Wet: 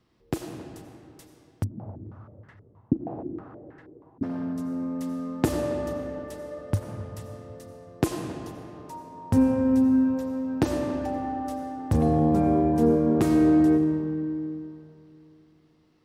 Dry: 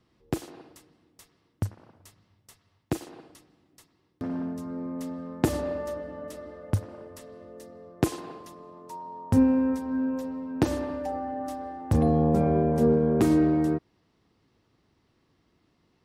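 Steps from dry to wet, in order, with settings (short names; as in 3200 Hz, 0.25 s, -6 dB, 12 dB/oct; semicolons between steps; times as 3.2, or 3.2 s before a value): digital reverb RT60 2.9 s, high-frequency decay 0.65×, pre-delay 45 ms, DRR 5 dB; 1.64–4.23 stepped low-pass 6.3 Hz 250–1700 Hz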